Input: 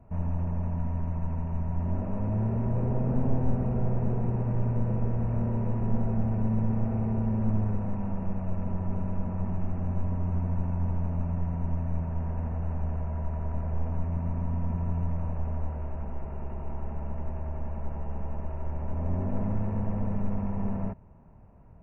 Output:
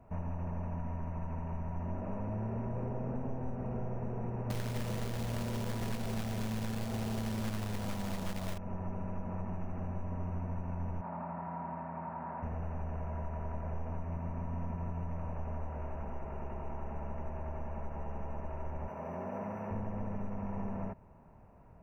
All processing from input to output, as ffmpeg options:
-filter_complex "[0:a]asettb=1/sr,asplit=3[s0][s1][s2];[s0]atrim=end=4.504[s3];[s1]atrim=start=4.5:end=8.58,asetpts=PTS-STARTPTS,afade=t=in:d=0.004:c=qsin,afade=t=out:st=4.076:d=0.004:c=qsin,bandreject=f=930:w=27,acontrast=68,acrusher=bits=4:mode=log:mix=0:aa=0.000001[s4];[s2]atrim=start=8.576[s5];[s3][s4]acrossfade=d=0.004:c1=hsin:c2=qsin[s6];[s6][s5]acrossfade=d=0.004:c1=qsin:c2=hsin,asettb=1/sr,asplit=3[s7][s8][s9];[s7]atrim=end=11.014[s10];[s8]atrim=start=11.01:end=12.43,asetpts=PTS-STARTPTS,afade=t=in:d=0.004:c=qsin,afade=t=out:st=1.416:d=0.004:c=qsin,highpass=230,equalizer=f=310:t=q:w=4:g=-4,equalizer=f=450:t=q:w=4:g=-10,equalizer=f=900:t=q:w=4:g=6,equalizer=f=1300:t=q:w=4:g=3,lowpass=f=2200:w=0.5412,lowpass=f=2200:w=1.3066,asplit=2[s11][s12];[s12]adelay=29,volume=0.266[s13];[s11][s13]amix=inputs=2:normalize=0,atrim=end_sample=62622[s14];[s9]atrim=start=12.426[s15];[s10][s14]acrossfade=d=0.004:c1=hsin:c2=qsin[s16];[s16][s15]acrossfade=d=0.004:c1=qsin:c2=hsin,asettb=1/sr,asplit=3[s17][s18][s19];[s17]atrim=end=18.884[s20];[s18]atrim=start=18.88:end=19.71,asetpts=PTS-STARTPTS,afade=t=in:d=0.004:c=qsin,afade=t=out:st=0.826:d=0.004:c=qsin,highpass=200,equalizer=f=290:t=o:w=0.76:g=-7.5[s21];[s19]atrim=start=19.706[s22];[s20][s21]acrossfade=d=0.004:c1=hsin:c2=qsin[s23];[s23][s22]acrossfade=d=0.004:c1=qsin:c2=hsin,lowshelf=f=290:g=-8.5,acompressor=threshold=0.0178:ratio=6,volume=1.26"

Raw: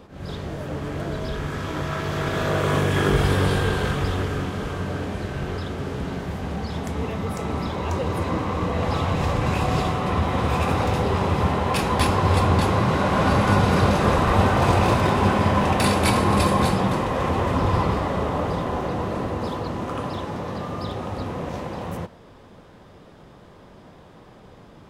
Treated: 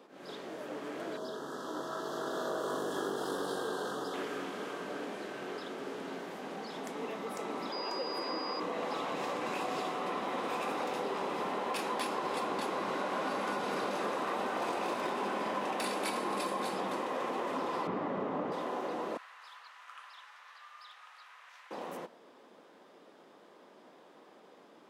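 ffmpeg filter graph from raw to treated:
-filter_complex "[0:a]asettb=1/sr,asplit=3[s0][s1][s2];[s0]atrim=end=1.174[s3];[s1]atrim=start=1.17:end=4.14,asetpts=PTS-STARTPTS,afade=t=in:d=0.004:c=qsin,afade=t=out:st=2.966:d=0.004:c=qsin,volume=6.31,asoftclip=hard,volume=0.158,asuperstop=centerf=2300:order=4:qfactor=1.2[s4];[s2]atrim=start=4.136[s5];[s3][s4]acrossfade=d=0.004:c1=hsin:c2=qsin[s6];[s6][s5]acrossfade=d=0.004:c1=qsin:c2=hsin,asettb=1/sr,asplit=3[s7][s8][s9];[s7]atrim=end=7.724[s10];[s8]atrim=start=7.72:end=8.6,asetpts=PTS-STARTPTS,afade=t=in:d=0.004:c=qsin,afade=t=out:st=0.876:d=0.004:c=qsin,bass=f=250:g=-6,treble=f=4000:g=-5,aeval=exprs='val(0)+0.0251*sin(2*PI*4900*n/s)':c=same[s11];[s9]atrim=start=8.596[s12];[s10][s11]acrossfade=d=0.004:c1=hsin:c2=qsin[s13];[s13][s12]acrossfade=d=0.004:c1=qsin:c2=hsin,asettb=1/sr,asplit=3[s14][s15][s16];[s14]atrim=end=17.874[s17];[s15]atrim=start=17.87:end=18.52,asetpts=PTS-STARTPTS,afade=t=in:d=0.004:c=qsin,afade=t=out:st=0.646:d=0.004:c=qsin,lowpass=7400,acrossover=split=2800[s18][s19];[s19]acompressor=threshold=0.00158:ratio=4:attack=1:release=60[s20];[s18][s20]amix=inputs=2:normalize=0,bass=f=250:g=13,treble=f=4000:g=-1[s21];[s16]atrim=start=18.516[s22];[s17][s21]acrossfade=d=0.004:c1=hsin:c2=qsin[s23];[s23][s22]acrossfade=d=0.004:c1=qsin:c2=hsin,asettb=1/sr,asplit=3[s24][s25][s26];[s24]atrim=end=19.174[s27];[s25]atrim=start=19.17:end=21.71,asetpts=PTS-STARTPTS,afade=t=in:d=0.004:c=qsin,afade=t=out:st=2.536:d=0.004:c=qsin,highpass=f=1400:w=0.5412,highpass=f=1400:w=1.3066,highshelf=f=2800:g=-10[s28];[s26]atrim=start=21.706[s29];[s27][s28]acrossfade=d=0.004:c1=hsin:c2=qsin[s30];[s30][s29]acrossfade=d=0.004:c1=qsin:c2=hsin,highpass=f=260:w=0.5412,highpass=f=260:w=1.3066,acompressor=threshold=0.0708:ratio=6,volume=0.398"

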